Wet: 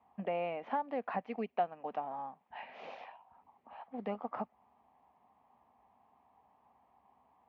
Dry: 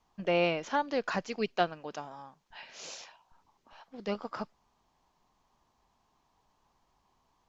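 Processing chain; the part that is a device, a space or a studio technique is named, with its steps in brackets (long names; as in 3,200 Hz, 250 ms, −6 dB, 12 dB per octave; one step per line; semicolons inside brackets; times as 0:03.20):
bass amplifier (downward compressor 3 to 1, threshold −39 dBFS, peak gain reduction 13 dB; loudspeaker in its box 75–2,300 Hz, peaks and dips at 100 Hz −7 dB, 150 Hz −9 dB, 240 Hz +4 dB, 340 Hz −7 dB, 760 Hz +9 dB, 1,500 Hz −8 dB)
level +2.5 dB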